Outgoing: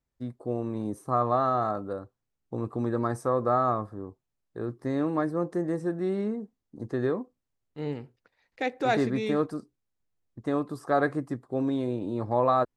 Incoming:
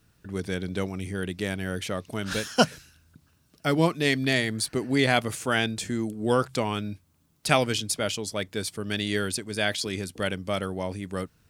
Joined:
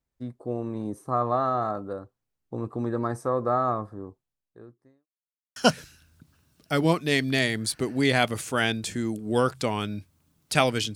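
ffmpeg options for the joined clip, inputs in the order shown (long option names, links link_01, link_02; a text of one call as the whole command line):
ffmpeg -i cue0.wav -i cue1.wav -filter_complex "[0:a]apad=whole_dur=10.95,atrim=end=10.95,asplit=2[link_01][link_02];[link_01]atrim=end=5.07,asetpts=PTS-STARTPTS,afade=type=out:start_time=4.1:duration=0.97:curve=qua[link_03];[link_02]atrim=start=5.07:end=5.56,asetpts=PTS-STARTPTS,volume=0[link_04];[1:a]atrim=start=2.5:end=7.89,asetpts=PTS-STARTPTS,afade=type=in:duration=0.004:curve=hsin[link_05];[link_03][link_04][link_05]concat=n=3:v=0:a=1" out.wav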